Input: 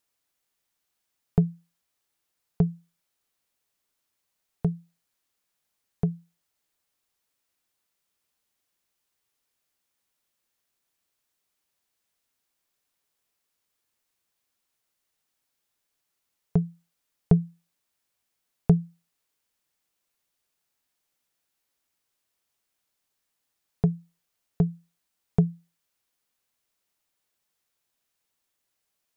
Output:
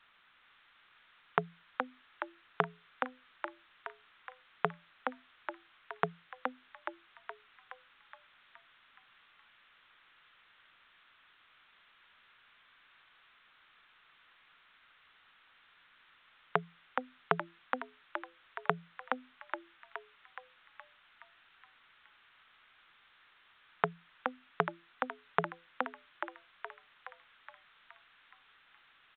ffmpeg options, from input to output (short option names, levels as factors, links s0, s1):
-filter_complex "[0:a]alimiter=limit=0.224:level=0:latency=1:release=150,highpass=f=1300:t=q:w=2.3,asplit=2[s0][s1];[s1]asplit=8[s2][s3][s4][s5][s6][s7][s8][s9];[s2]adelay=420,afreqshift=85,volume=0.596[s10];[s3]adelay=840,afreqshift=170,volume=0.347[s11];[s4]adelay=1260,afreqshift=255,volume=0.2[s12];[s5]adelay=1680,afreqshift=340,volume=0.116[s13];[s6]adelay=2100,afreqshift=425,volume=0.0676[s14];[s7]adelay=2520,afreqshift=510,volume=0.0389[s15];[s8]adelay=2940,afreqshift=595,volume=0.0226[s16];[s9]adelay=3360,afreqshift=680,volume=0.0132[s17];[s10][s11][s12][s13][s14][s15][s16][s17]amix=inputs=8:normalize=0[s18];[s0][s18]amix=inputs=2:normalize=0,volume=7.5" -ar 8000 -c:a pcm_alaw